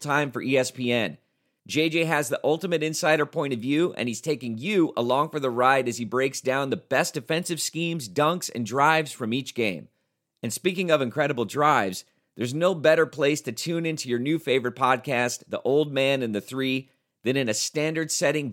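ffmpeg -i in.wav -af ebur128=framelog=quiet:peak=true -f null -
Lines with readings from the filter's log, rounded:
Integrated loudness:
  I:         -24.7 LUFS
  Threshold: -34.9 LUFS
Loudness range:
  LRA:         1.7 LU
  Threshold: -44.9 LUFS
  LRA low:   -25.7 LUFS
  LRA high:  -24.0 LUFS
True peak:
  Peak:       -5.9 dBFS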